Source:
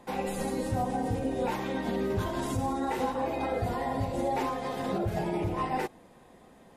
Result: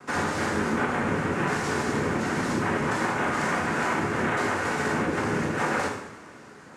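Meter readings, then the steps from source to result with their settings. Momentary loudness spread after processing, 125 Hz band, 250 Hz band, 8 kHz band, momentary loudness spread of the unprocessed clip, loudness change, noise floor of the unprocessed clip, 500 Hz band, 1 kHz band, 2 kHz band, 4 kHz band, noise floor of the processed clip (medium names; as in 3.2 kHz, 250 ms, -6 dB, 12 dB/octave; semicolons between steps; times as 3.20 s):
2 LU, +2.5 dB, +4.0 dB, +8.5 dB, 2 LU, +5.0 dB, -56 dBFS, +2.5 dB, +4.0 dB, +14.5 dB, +7.0 dB, -47 dBFS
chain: noise-vocoded speech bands 3; compression, threshold -31 dBFS, peak gain reduction 7.5 dB; two-slope reverb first 0.72 s, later 2.5 s, from -18 dB, DRR -2.5 dB; trim +4.5 dB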